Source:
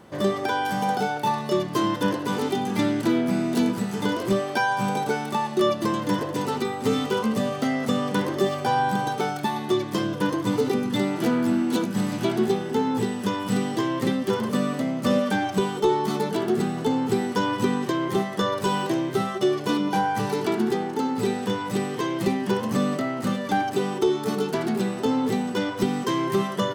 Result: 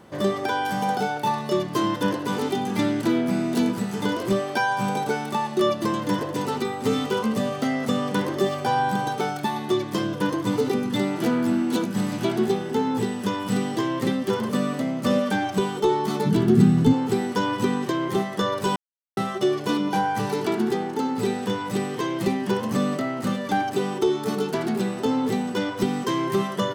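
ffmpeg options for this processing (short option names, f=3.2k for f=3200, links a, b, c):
-filter_complex "[0:a]asplit=3[a][b][c];[a]afade=t=out:st=16.25:d=0.02[d];[b]asubboost=boost=8.5:cutoff=190,afade=t=in:st=16.25:d=0.02,afade=t=out:st=16.92:d=0.02[e];[c]afade=t=in:st=16.92:d=0.02[f];[d][e][f]amix=inputs=3:normalize=0,asplit=3[g][h][i];[g]atrim=end=18.76,asetpts=PTS-STARTPTS,afade=t=out:st=18.756:d=0.004:c=hsin[j];[h]atrim=start=18.76:end=19.17,asetpts=PTS-STARTPTS,volume=0[k];[i]atrim=start=19.17,asetpts=PTS-STARTPTS,afade=t=in:d=0.004:c=hsin[l];[j][k][l]concat=n=3:v=0:a=1"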